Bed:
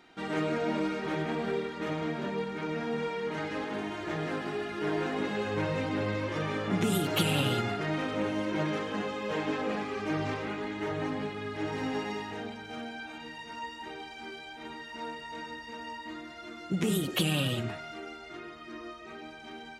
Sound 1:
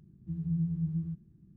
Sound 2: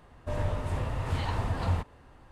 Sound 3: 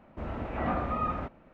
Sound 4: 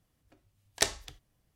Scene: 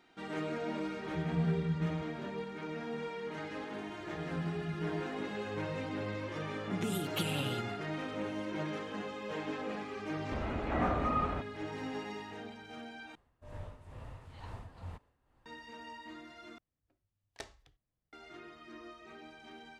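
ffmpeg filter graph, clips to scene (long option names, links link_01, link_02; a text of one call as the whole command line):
ffmpeg -i bed.wav -i cue0.wav -i cue1.wav -i cue2.wav -i cue3.wav -filter_complex "[1:a]asplit=2[link_01][link_02];[0:a]volume=-7dB[link_03];[2:a]tremolo=f=2.2:d=0.65[link_04];[4:a]lowpass=frequency=2100:poles=1[link_05];[link_03]asplit=3[link_06][link_07][link_08];[link_06]atrim=end=13.154[link_09];[link_04]atrim=end=2.31,asetpts=PTS-STARTPTS,volume=-14.5dB[link_10];[link_07]atrim=start=15.456:end=16.584[link_11];[link_05]atrim=end=1.55,asetpts=PTS-STARTPTS,volume=-14.5dB[link_12];[link_08]atrim=start=18.126[link_13];[link_01]atrim=end=1.56,asetpts=PTS-STARTPTS,volume=-1.5dB,afade=type=in:duration=0.004:curve=hsin,afade=type=out:start_time=1.556:duration=0.004:curve=hsin,adelay=870[link_14];[link_02]atrim=end=1.56,asetpts=PTS-STARTPTS,volume=-7.5dB,afade=type=in:duration=0.004:curve=hsin,afade=type=out:start_time=1.556:duration=0.004:curve=hsin,adelay=3860[link_15];[3:a]atrim=end=1.53,asetpts=PTS-STARTPTS,volume=-1.5dB,afade=type=in:duration=0.004:curve=hsin,afade=type=out:start_time=1.526:duration=0.004:curve=hsin,adelay=10140[link_16];[link_09][link_10]acrossfade=duration=0.004:curve1=hsin:curve2=hsin[link_17];[link_17][link_11]acrossfade=duration=0.004:curve1=hsin:curve2=hsin[link_18];[link_18][link_12]acrossfade=duration=0.004:curve1=hsin:curve2=hsin[link_19];[link_19][link_13]acrossfade=duration=0.004:curve1=hsin:curve2=hsin[link_20];[link_20][link_14][link_15][link_16]amix=inputs=4:normalize=0" out.wav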